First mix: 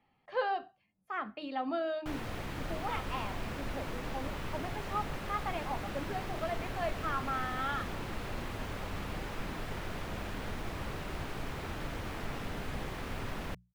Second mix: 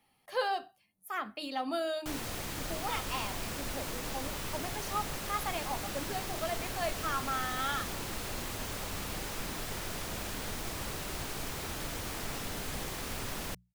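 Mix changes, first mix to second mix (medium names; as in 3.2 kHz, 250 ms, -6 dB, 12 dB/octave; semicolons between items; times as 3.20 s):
speech: remove distance through air 93 m; master: add tone controls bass -2 dB, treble +15 dB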